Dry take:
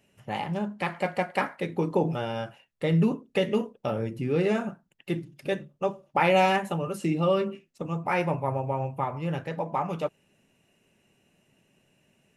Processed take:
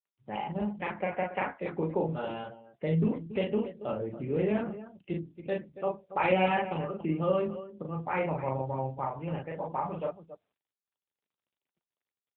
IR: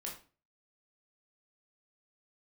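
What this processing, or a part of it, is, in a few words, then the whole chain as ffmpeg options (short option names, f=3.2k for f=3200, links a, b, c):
mobile call with aggressive noise cancelling: -filter_complex "[0:a]asettb=1/sr,asplit=3[a][b][c];[a]atrim=end=0.494[d];[b]atrim=start=0.49:end=1.71,asetpts=PTS-STARTPTS,afade=t=in:d=0.004:c=qsin,afade=t=out:st=1.216:d=0.004:c=qsin,asplit=2[e][f];[f]adelay=15,volume=-12dB[g];[e][g]amix=inputs=2:normalize=0,atrim=end_sample=53802[h];[c]atrim=start=1.706[i];[d][h]acrossfade=d=0.004:c1=hsin:c2=qsin[j];[j][i]acrossfade=d=0.004:c1=qsin:c2=hsin,highpass=140,aecho=1:1:37.9|279.9:0.794|0.251,afftdn=nr=34:nf=-43,volume=-5dB" -ar 8000 -c:a libopencore_amrnb -b:a 7950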